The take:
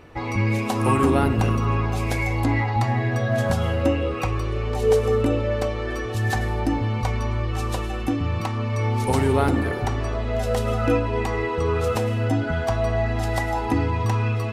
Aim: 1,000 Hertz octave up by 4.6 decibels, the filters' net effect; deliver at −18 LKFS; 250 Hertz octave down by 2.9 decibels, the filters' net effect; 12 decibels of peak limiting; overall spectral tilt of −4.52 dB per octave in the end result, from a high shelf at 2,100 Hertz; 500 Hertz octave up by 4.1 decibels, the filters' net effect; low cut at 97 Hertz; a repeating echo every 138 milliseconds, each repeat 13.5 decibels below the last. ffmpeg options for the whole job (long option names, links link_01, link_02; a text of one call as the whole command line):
ffmpeg -i in.wav -af "highpass=97,equalizer=frequency=250:width_type=o:gain=-5.5,equalizer=frequency=500:width_type=o:gain=5.5,equalizer=frequency=1000:width_type=o:gain=6,highshelf=frequency=2100:gain=-8.5,alimiter=limit=-17dB:level=0:latency=1,aecho=1:1:138|276:0.211|0.0444,volume=7.5dB" out.wav